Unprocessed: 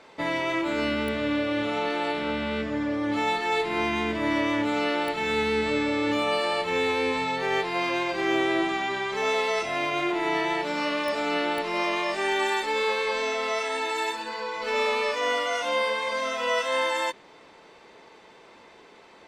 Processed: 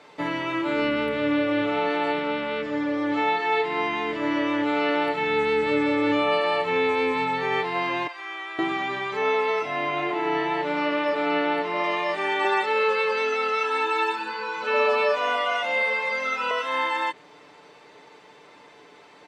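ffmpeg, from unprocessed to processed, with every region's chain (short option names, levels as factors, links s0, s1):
-filter_complex "[0:a]asettb=1/sr,asplit=3[s0][s1][s2];[s0]atrim=end=2.204[s3];[s1]atrim=start=2.2:end=4.89,asetpts=PTS-STARTPTS,afade=t=in:d=0.004:c=qsin,afade=t=out:st=2.686:d=0.004:c=qsin,lowpass=f=8500:w=0.5412,lowpass=f=8500:w=1.3066,lowshelf=f=140:g=-10[s4];[s2]atrim=start=4.886[s5];[s3][s4]acrossfade=d=0.004:c1=hsin:c2=qsin[s6];[s6][s5]acrossfade=d=0.004:c1=qsin:c2=hsin,asettb=1/sr,asplit=3[s7][s8][s9];[s7]atrim=end=8.074[s10];[s8]atrim=start=8.07:end=8.59,asetpts=PTS-STARTPTS,afade=t=in:d=0.004:c=qsin,afade=t=out:st=0.516:d=0.004:c=qsin,highpass=1300,highshelf=f=2100:g=-12[s11];[s9]atrim=start=8.586[s12];[s10][s11]acrossfade=d=0.004:c1=hsin:c2=qsin[s13];[s13][s12]acrossfade=d=0.004:c1=qsin:c2=hsin,asettb=1/sr,asplit=3[s14][s15][s16];[s14]atrim=end=9.174[s17];[s15]atrim=start=9.17:end=11.84,asetpts=PTS-STARTPTS,afade=t=in:d=0.004:c=qsin,afade=t=out:st=2.666:d=0.004:c=qsin,highpass=110,highshelf=f=6500:g=-11.5,aecho=1:1:704:0.133,atrim=end_sample=117747[s18];[s16]atrim=start=11.836[s19];[s17][s18]acrossfade=d=0.004:c1=hsin:c2=qsin[s20];[s20][s19]acrossfade=d=0.004:c1=qsin:c2=hsin,asettb=1/sr,asplit=3[s21][s22][s23];[s21]atrim=end=12.444[s24];[s22]atrim=start=12.44:end=16.51,asetpts=PTS-STARTPTS,afade=t=in:d=0.004:c=qsin,afade=t=out:st=4.066:d=0.004:c=qsin,highpass=140,aecho=1:1:5.3:0.96,atrim=end_sample=179487[s25];[s23]atrim=start=16.506[s26];[s24][s25]acrossfade=d=0.004:c1=hsin:c2=qsin[s27];[s27][s26]acrossfade=d=0.004:c1=qsin:c2=hsin,highpass=66,aecho=1:1:6.8:0.52,acrossover=split=3600[s28][s29];[s29]acompressor=threshold=0.00251:ratio=4:attack=1:release=60[s30];[s28][s30]amix=inputs=2:normalize=0"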